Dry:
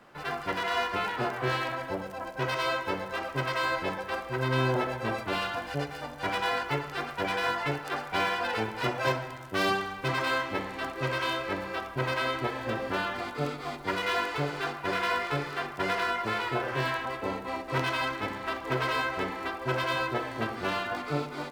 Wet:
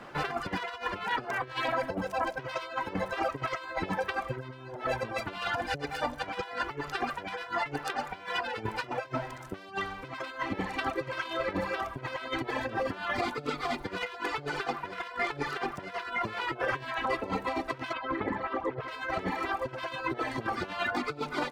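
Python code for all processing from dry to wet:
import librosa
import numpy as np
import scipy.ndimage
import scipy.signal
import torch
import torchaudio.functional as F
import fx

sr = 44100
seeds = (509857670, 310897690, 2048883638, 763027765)

y = fx.chain(x, sr, fx.envelope_sharpen(power=1.5),
    fx.transformer_sat(knee_hz=530.0), at=(17.93, 18.88))
y = fx.dereverb_blind(y, sr, rt60_s=1.1)
y = fx.over_compress(y, sr, threshold_db=-37.0, ratio=-0.5)
y = fx.high_shelf(y, sr, hz=10000.0, db=-11.0)
y = y * librosa.db_to_amplitude(4.5)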